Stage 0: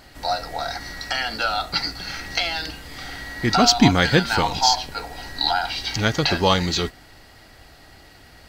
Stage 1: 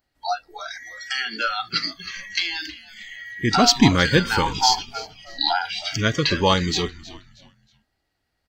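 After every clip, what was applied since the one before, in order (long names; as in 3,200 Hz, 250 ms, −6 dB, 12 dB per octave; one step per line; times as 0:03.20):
noise reduction from a noise print of the clip's start 28 dB
echo with shifted repeats 317 ms, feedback 32%, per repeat −100 Hz, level −18 dB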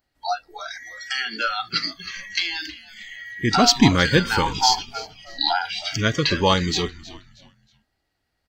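no processing that can be heard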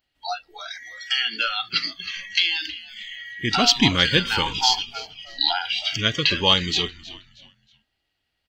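parametric band 3,000 Hz +13.5 dB 0.79 octaves
level −5 dB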